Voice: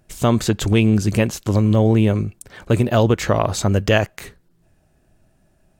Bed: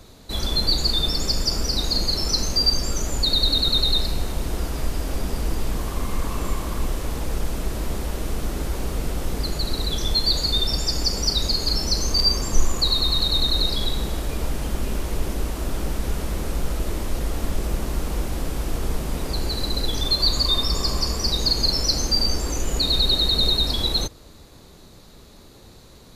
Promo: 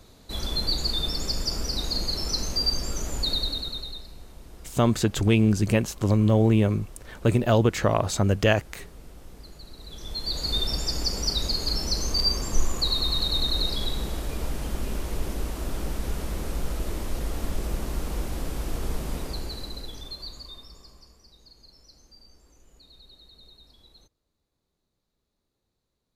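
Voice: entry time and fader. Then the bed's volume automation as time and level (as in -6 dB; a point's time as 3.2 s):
4.55 s, -4.5 dB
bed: 3.31 s -5.5 dB
4.05 s -20 dB
9.77 s -20 dB
10.53 s -4.5 dB
19.14 s -4.5 dB
21.28 s -33 dB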